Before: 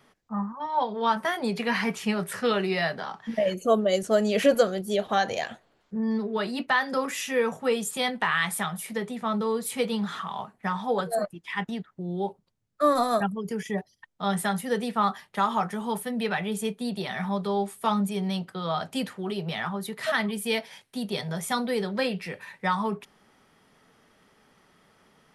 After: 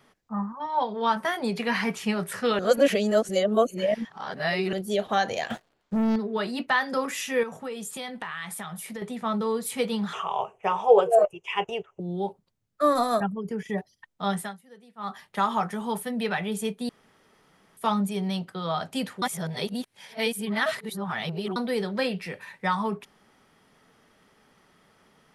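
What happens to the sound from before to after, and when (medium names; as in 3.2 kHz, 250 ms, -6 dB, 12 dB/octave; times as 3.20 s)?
2.59–4.73 s: reverse
5.50–6.16 s: waveshaping leveller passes 3
7.43–9.02 s: compression 3:1, threshold -34 dBFS
10.13–12.00 s: FFT filter 110 Hz 0 dB, 270 Hz -16 dB, 390 Hz +12 dB, 740 Hz +8 dB, 1.1 kHz +4 dB, 1.8 kHz -7 dB, 2.8 kHz +14 dB, 4.1 kHz -18 dB, 6.2 kHz +6 dB, 11 kHz -7 dB
13.20–13.69 s: treble shelf 2.8 kHz -11.5 dB
14.29–15.25 s: dip -23.5 dB, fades 0.28 s
16.89–17.77 s: room tone
19.22–21.56 s: reverse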